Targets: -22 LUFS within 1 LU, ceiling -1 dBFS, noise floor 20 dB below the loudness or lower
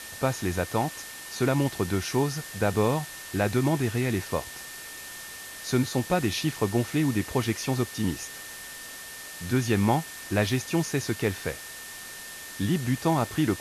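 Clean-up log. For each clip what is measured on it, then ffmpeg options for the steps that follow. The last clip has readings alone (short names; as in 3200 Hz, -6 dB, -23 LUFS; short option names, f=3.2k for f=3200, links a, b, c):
steady tone 1800 Hz; tone level -44 dBFS; noise floor -41 dBFS; noise floor target -48 dBFS; loudness -28.0 LUFS; peak -11.0 dBFS; loudness target -22.0 LUFS
-> -af "bandreject=f=1.8k:w=30"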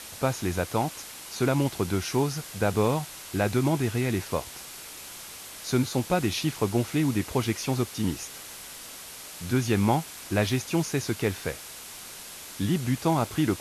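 steady tone none; noise floor -43 dBFS; noise floor target -48 dBFS
-> -af "afftdn=nr=6:nf=-43"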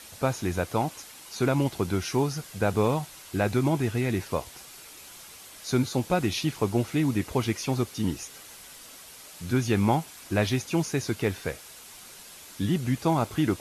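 noise floor -47 dBFS; noise floor target -48 dBFS
-> -af "afftdn=nr=6:nf=-47"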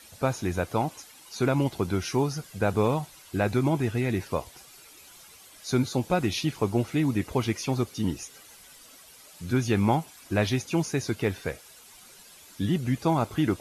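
noise floor -51 dBFS; loudness -27.5 LUFS; peak -11.0 dBFS; loudness target -22.0 LUFS
-> -af "volume=5.5dB"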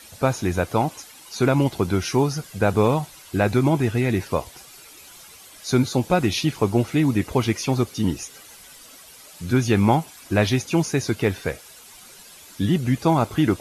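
loudness -22.0 LUFS; peak -5.5 dBFS; noise floor -46 dBFS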